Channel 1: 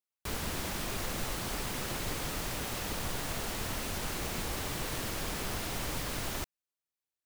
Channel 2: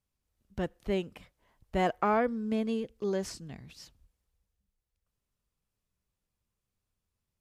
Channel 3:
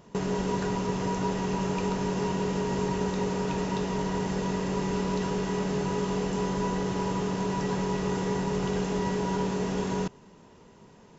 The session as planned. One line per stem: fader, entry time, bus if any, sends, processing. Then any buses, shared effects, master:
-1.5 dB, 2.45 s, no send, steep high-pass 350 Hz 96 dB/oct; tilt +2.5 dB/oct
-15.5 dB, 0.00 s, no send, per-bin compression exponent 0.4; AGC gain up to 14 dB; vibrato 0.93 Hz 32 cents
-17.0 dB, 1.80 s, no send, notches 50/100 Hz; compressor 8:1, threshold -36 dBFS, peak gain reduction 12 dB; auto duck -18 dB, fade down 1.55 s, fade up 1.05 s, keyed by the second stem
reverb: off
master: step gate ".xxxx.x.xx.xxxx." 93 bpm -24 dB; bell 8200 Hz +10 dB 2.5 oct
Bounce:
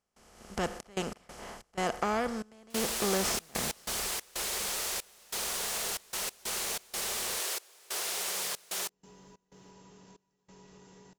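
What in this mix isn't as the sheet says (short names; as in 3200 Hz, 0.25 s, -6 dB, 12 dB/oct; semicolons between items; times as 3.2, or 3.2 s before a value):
stem 1: missing tilt +2.5 dB/oct; stem 2: missing vibrato 0.93 Hz 32 cents; stem 3: entry 1.80 s -> 2.70 s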